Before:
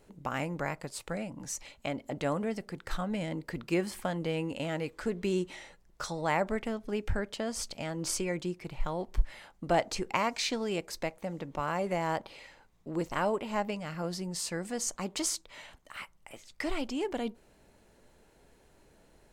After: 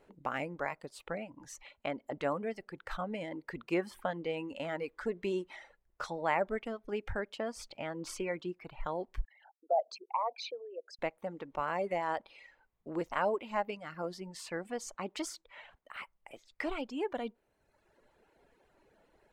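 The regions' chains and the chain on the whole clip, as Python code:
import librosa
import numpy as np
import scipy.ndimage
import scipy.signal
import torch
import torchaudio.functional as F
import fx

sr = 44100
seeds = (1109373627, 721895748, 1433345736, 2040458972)

y = fx.chain(x, sr, fx.envelope_sharpen(power=3.0),
    fx.highpass(hz=550.0, slope=24),
    fx.peak_eq(hz=2000.0, db=-13.5, octaves=0.96), at=(9.25, 10.99))
y = fx.bass_treble(y, sr, bass_db=-9, treble_db=-15)
y = fx.dereverb_blind(y, sr, rt60_s=1.1)
y = fx.high_shelf(y, sr, hz=8400.0, db=4.0)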